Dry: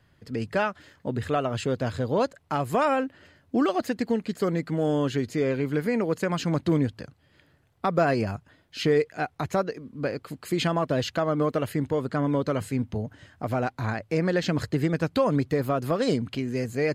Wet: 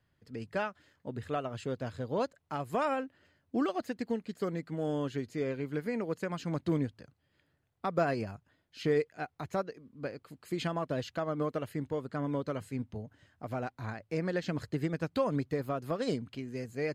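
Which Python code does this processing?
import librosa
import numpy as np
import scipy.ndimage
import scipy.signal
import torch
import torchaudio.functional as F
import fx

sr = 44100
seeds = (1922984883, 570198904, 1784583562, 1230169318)

y = fx.upward_expand(x, sr, threshold_db=-32.0, expansion=1.5)
y = y * librosa.db_to_amplitude(-6.0)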